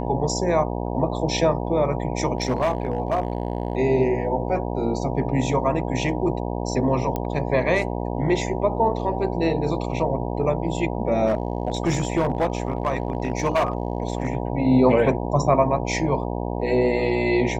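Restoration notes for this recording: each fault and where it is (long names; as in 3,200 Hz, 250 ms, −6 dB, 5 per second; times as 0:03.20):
mains buzz 60 Hz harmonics 16 −27 dBFS
0:02.37–0:03.77: clipping −16.5 dBFS
0:07.16: click −13 dBFS
0:11.26–0:14.35: clipping −16 dBFS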